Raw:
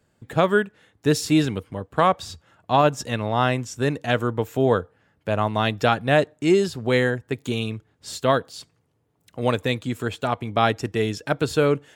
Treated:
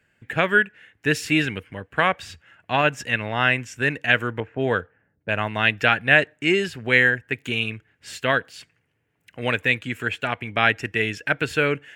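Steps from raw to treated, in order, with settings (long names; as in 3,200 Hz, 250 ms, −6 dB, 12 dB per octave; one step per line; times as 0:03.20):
0:04.40–0:05.29: low-pass that shuts in the quiet parts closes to 380 Hz, open at −15 dBFS
flat-topped bell 2,100 Hz +14 dB 1.2 octaves
level −4 dB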